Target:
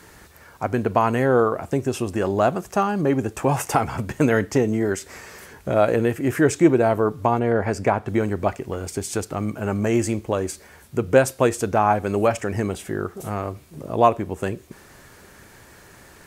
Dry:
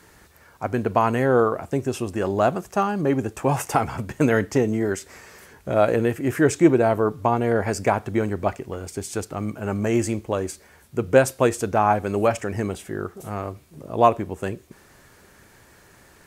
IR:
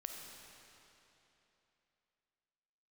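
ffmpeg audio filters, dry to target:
-filter_complex "[0:a]asettb=1/sr,asplit=3[s0][s1][s2];[s0]atrim=end=7.394[s3];[s1]atrim=start=7.39:end=8.08,asetpts=PTS-STARTPTS,afade=t=in:d=0.004:c=qsin,afade=t=out:st=0.686:d=0.004:c=qsin,highshelf=f=4600:g=-10.5[s4];[s2]atrim=start=8.076[s5];[s3][s4]acrossfade=d=0.004:c1=hsin:c2=qsin[s6];[s6][s5]acrossfade=d=0.004:c1=qsin:c2=hsin,asplit=2[s7][s8];[s8]acompressor=threshold=0.0355:ratio=6,volume=0.891[s9];[s7][s9]amix=inputs=2:normalize=0,volume=0.891"

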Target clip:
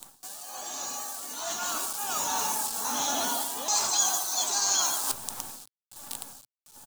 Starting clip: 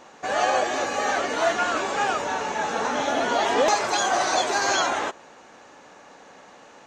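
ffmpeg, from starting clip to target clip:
-af "tremolo=f=1.3:d=0.87,aecho=1:1:147|294|441:0.168|0.0487|0.0141,afftdn=nr=27:nf=-46,adynamicequalizer=threshold=0.0158:dfrequency=930:dqfactor=1.2:tfrequency=930:tqfactor=1.2:attack=5:release=100:ratio=0.375:range=2.5:mode=boostabove:tftype=bell,bandreject=f=45.81:t=h:w=4,bandreject=f=91.62:t=h:w=4,bandreject=f=137.43:t=h:w=4,bandreject=f=183.24:t=h:w=4,bandreject=f=229.05:t=h:w=4,bandreject=f=274.86:t=h:w=4,bandreject=f=320.67:t=h:w=4,bandreject=f=366.48:t=h:w=4,bandreject=f=412.29:t=h:w=4,bandreject=f=458.1:t=h:w=4,bandreject=f=503.91:t=h:w=4,bandreject=f=549.72:t=h:w=4,bandreject=f=595.53:t=h:w=4,bandreject=f=641.34:t=h:w=4,acrusher=bits=8:dc=4:mix=0:aa=0.000001,crystalizer=i=7.5:c=0,areverse,acompressor=threshold=0.0158:ratio=12,areverse,equalizer=f=125:t=o:w=1:g=5,equalizer=f=250:t=o:w=1:g=5,equalizer=f=500:t=o:w=1:g=-7,equalizer=f=1000:t=o:w=1:g=3,equalizer=f=2000:t=o:w=1:g=-11,equalizer=f=4000:t=o:w=1:g=3,equalizer=f=8000:t=o:w=1:g=7,dynaudnorm=f=250:g=13:m=3.16"

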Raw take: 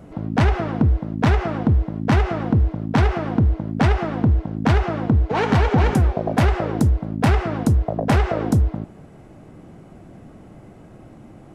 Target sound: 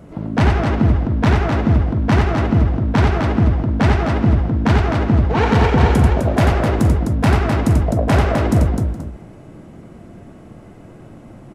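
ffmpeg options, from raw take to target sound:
-filter_complex "[0:a]bandreject=f=770:w=18,asplit=2[s0][s1];[s1]aecho=0:1:42|89|256|419|480:0.282|0.562|0.562|0.106|0.15[s2];[s0][s2]amix=inputs=2:normalize=0,volume=1.19"

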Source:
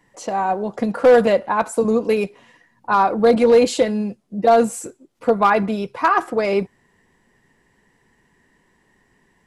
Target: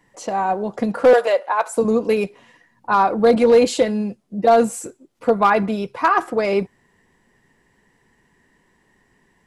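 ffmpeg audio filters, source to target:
-filter_complex "[0:a]asettb=1/sr,asplit=3[s0][s1][s2];[s0]atrim=end=1.134[s3];[s1]atrim=start=1.13:end=1.73,asetpts=PTS-STARTPTS,afade=t=in:d=0.004:c=qsin,afade=t=out:st=0.596:d=0.004:c=qsin,highpass=f=470:w=0.5412,highpass=f=470:w=1.3066[s4];[s2]atrim=start=1.726[s5];[s3][s4]acrossfade=d=0.004:c1=hsin:c2=qsin[s6];[s6][s5]acrossfade=d=0.004:c1=qsin:c2=hsin"

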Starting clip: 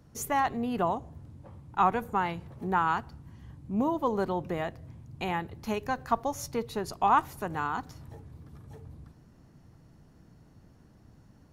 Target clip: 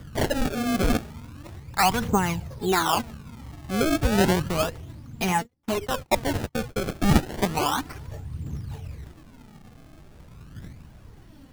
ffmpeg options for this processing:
-filter_complex "[0:a]asettb=1/sr,asplit=3[s0][s1][s2];[s0]atrim=end=5.424[s3];[s1]atrim=start=5.42:end=6.94,asetpts=PTS-STARTPTS,afade=t=in:d=0.004:c=qsin,afade=t=out:st=1.516:d=0.004:c=qsin,agate=range=0.0141:threshold=0.0158:ratio=16:detection=peak[s4];[s2]atrim=start=6.936[s5];[s3][s4]acrossfade=d=0.004:c1=hsin:c2=qsin[s6];[s6][s5]acrossfade=d=0.004:c1=qsin:c2=hsin,bass=f=250:g=3,treble=f=4000:g=8,asplit=2[s7][s8];[s8]alimiter=limit=0.0708:level=0:latency=1:release=23,volume=1.19[s9];[s7][s9]amix=inputs=2:normalize=0,aphaser=in_gain=1:out_gain=1:delay=4.9:decay=0.62:speed=0.47:type=triangular,acrusher=samples=26:mix=1:aa=0.000001:lfo=1:lforange=41.6:lforate=0.33,volume=0.891"

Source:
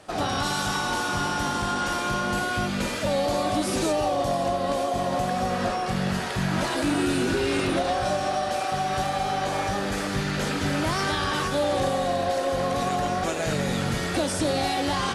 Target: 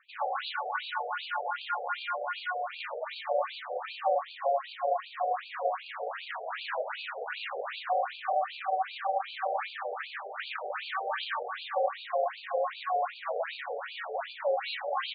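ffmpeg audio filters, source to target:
-af "adynamicsmooth=sensitivity=4:basefreq=1700,afftfilt=real='re*between(b*sr/1024,550*pow(3400/550,0.5+0.5*sin(2*PI*2.6*pts/sr))/1.41,550*pow(3400/550,0.5+0.5*sin(2*PI*2.6*pts/sr))*1.41)':imag='im*between(b*sr/1024,550*pow(3400/550,0.5+0.5*sin(2*PI*2.6*pts/sr))/1.41,550*pow(3400/550,0.5+0.5*sin(2*PI*2.6*pts/sr))*1.41)':win_size=1024:overlap=0.75"

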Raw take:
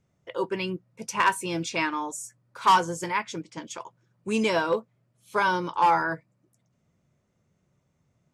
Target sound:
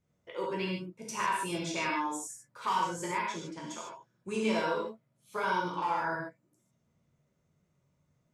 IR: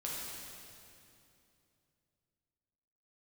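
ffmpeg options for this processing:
-filter_complex "[0:a]acompressor=threshold=0.0708:ratio=6[s0];[1:a]atrim=start_sample=2205,afade=t=out:st=0.21:d=0.01,atrim=end_sample=9702[s1];[s0][s1]afir=irnorm=-1:irlink=0,volume=0.631"

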